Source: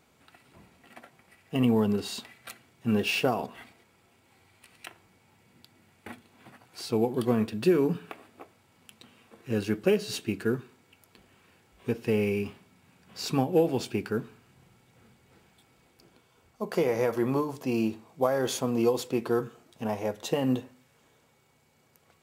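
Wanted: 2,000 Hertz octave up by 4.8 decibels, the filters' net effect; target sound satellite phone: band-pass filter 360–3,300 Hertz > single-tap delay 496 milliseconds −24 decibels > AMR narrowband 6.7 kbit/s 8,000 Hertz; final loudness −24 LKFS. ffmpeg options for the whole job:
ffmpeg -i in.wav -af "highpass=360,lowpass=3300,equalizer=frequency=2000:width_type=o:gain=8,aecho=1:1:496:0.0631,volume=7.5dB" -ar 8000 -c:a libopencore_amrnb -b:a 6700 out.amr

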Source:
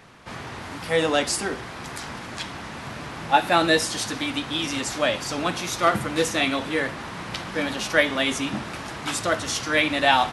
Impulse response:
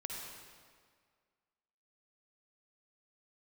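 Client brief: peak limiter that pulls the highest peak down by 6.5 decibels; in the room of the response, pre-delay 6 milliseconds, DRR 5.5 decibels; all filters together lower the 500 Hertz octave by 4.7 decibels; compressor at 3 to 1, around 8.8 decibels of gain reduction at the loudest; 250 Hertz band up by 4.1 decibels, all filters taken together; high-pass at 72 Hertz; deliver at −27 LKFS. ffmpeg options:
-filter_complex "[0:a]highpass=72,equalizer=frequency=250:width_type=o:gain=8,equalizer=frequency=500:width_type=o:gain=-8,acompressor=threshold=-26dB:ratio=3,alimiter=limit=-19dB:level=0:latency=1,asplit=2[link_01][link_02];[1:a]atrim=start_sample=2205,adelay=6[link_03];[link_02][link_03]afir=irnorm=-1:irlink=0,volume=-5.5dB[link_04];[link_01][link_04]amix=inputs=2:normalize=0,volume=2.5dB"

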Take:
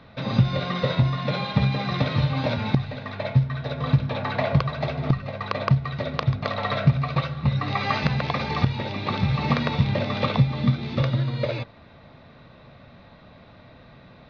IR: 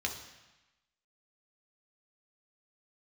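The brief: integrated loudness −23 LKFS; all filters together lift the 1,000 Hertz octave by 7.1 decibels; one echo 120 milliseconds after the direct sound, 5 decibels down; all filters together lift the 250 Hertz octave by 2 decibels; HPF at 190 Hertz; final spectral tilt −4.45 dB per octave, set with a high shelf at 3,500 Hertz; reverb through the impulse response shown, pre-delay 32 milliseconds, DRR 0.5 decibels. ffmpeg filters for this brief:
-filter_complex "[0:a]highpass=190,equalizer=frequency=250:width_type=o:gain=6,equalizer=frequency=1000:width_type=o:gain=8,highshelf=frequency=3500:gain=4,aecho=1:1:120:0.562,asplit=2[link_01][link_02];[1:a]atrim=start_sample=2205,adelay=32[link_03];[link_02][link_03]afir=irnorm=-1:irlink=0,volume=-4.5dB[link_04];[link_01][link_04]amix=inputs=2:normalize=0,volume=-3dB"

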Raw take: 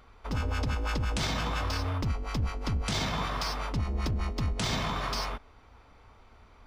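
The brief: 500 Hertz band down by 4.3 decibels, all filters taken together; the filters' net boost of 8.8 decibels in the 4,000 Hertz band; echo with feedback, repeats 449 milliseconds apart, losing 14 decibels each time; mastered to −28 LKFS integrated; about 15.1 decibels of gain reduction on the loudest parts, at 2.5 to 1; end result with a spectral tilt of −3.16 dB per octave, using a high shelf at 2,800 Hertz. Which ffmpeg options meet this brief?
ffmpeg -i in.wav -af "equalizer=frequency=500:width_type=o:gain=-6,highshelf=frequency=2800:gain=6,equalizer=frequency=4000:width_type=o:gain=6,acompressor=threshold=-46dB:ratio=2.5,aecho=1:1:449|898:0.2|0.0399,volume=13.5dB" out.wav

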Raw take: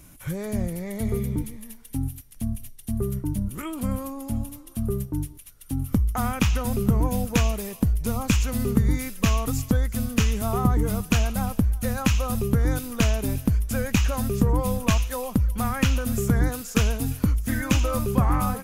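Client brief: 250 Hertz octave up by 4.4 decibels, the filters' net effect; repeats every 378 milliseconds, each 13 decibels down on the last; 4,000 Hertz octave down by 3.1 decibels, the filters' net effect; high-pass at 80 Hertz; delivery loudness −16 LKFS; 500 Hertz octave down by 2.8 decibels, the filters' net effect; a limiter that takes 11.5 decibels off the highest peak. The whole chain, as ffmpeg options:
ffmpeg -i in.wav -af "highpass=80,equalizer=frequency=250:width_type=o:gain=6.5,equalizer=frequency=500:width_type=o:gain=-5.5,equalizer=frequency=4000:width_type=o:gain=-4.5,alimiter=limit=-15.5dB:level=0:latency=1,aecho=1:1:378|756|1134:0.224|0.0493|0.0108,volume=11dB" out.wav

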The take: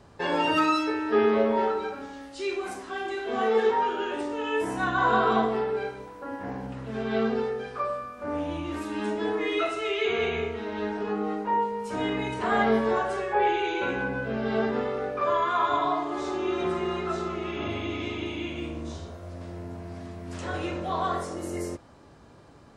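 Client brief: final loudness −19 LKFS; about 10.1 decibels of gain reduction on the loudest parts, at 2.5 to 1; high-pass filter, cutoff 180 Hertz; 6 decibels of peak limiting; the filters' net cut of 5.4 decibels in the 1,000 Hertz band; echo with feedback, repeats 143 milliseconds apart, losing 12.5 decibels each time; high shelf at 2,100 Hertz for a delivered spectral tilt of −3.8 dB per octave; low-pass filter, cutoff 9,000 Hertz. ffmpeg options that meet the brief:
ffmpeg -i in.wav -af "highpass=180,lowpass=9000,equalizer=frequency=1000:width_type=o:gain=-8.5,highshelf=frequency=2100:gain=7,acompressor=threshold=-35dB:ratio=2.5,alimiter=level_in=4dB:limit=-24dB:level=0:latency=1,volume=-4dB,aecho=1:1:143|286|429:0.237|0.0569|0.0137,volume=18dB" out.wav

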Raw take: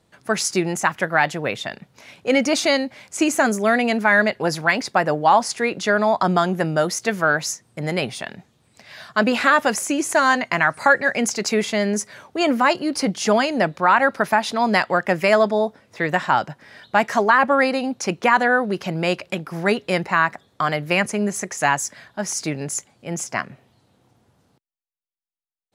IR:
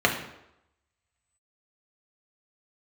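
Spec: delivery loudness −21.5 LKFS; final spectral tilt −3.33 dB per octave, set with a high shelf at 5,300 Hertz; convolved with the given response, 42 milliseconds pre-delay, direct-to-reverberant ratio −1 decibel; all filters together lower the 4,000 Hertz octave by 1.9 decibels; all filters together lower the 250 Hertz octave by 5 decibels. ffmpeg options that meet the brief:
-filter_complex "[0:a]equalizer=frequency=250:width_type=o:gain=-6.5,equalizer=frequency=4000:width_type=o:gain=-6,highshelf=frequency=5300:gain=7,asplit=2[link_01][link_02];[1:a]atrim=start_sample=2205,adelay=42[link_03];[link_02][link_03]afir=irnorm=-1:irlink=0,volume=-16dB[link_04];[link_01][link_04]amix=inputs=2:normalize=0,volume=-4dB"

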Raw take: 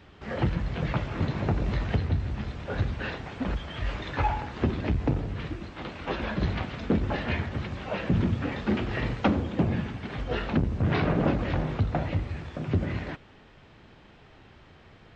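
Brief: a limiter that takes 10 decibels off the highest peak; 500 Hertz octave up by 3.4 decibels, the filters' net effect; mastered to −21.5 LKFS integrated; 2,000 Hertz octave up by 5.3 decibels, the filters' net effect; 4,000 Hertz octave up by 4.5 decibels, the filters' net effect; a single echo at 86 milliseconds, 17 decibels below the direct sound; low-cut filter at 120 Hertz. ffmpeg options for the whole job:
ffmpeg -i in.wav -af "highpass=120,equalizer=frequency=500:width_type=o:gain=4,equalizer=frequency=2000:width_type=o:gain=5.5,equalizer=frequency=4000:width_type=o:gain=3.5,alimiter=limit=-17.5dB:level=0:latency=1,aecho=1:1:86:0.141,volume=9dB" out.wav

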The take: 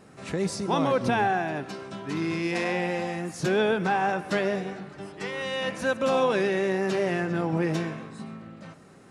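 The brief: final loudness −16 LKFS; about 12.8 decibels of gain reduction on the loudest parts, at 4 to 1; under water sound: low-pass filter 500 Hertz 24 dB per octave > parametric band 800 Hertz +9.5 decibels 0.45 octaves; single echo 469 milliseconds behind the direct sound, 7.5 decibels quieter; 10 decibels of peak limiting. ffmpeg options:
ffmpeg -i in.wav -af "acompressor=threshold=-36dB:ratio=4,alimiter=level_in=9dB:limit=-24dB:level=0:latency=1,volume=-9dB,lowpass=frequency=500:width=0.5412,lowpass=frequency=500:width=1.3066,equalizer=frequency=800:width_type=o:width=0.45:gain=9.5,aecho=1:1:469:0.422,volume=27.5dB" out.wav

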